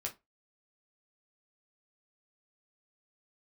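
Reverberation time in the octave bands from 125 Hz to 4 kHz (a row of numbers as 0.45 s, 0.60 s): 0.20 s, 0.20 s, 0.25 s, 0.20 s, 0.20 s, 0.15 s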